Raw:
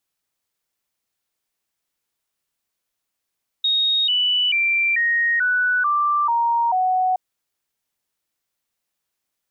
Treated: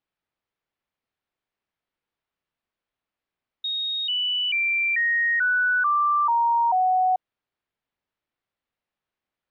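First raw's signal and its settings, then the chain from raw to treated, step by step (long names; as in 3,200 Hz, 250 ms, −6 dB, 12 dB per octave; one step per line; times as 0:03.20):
stepped sweep 3,740 Hz down, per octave 3, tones 8, 0.44 s, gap 0.00 s −16 dBFS
high-frequency loss of the air 310 metres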